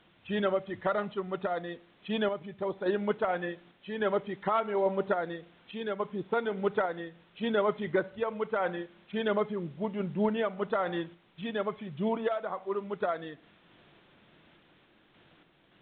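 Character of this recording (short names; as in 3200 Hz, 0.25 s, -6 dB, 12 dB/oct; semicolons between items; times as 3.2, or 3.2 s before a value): a quantiser's noise floor 10-bit, dither triangular; random-step tremolo; µ-law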